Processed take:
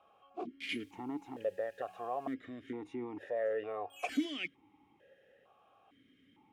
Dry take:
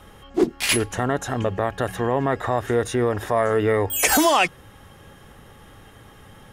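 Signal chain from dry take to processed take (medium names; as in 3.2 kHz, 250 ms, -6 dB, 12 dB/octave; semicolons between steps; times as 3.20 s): 0.63–2.33 s: added noise violet -34 dBFS; stepped vowel filter 2.2 Hz; trim -6 dB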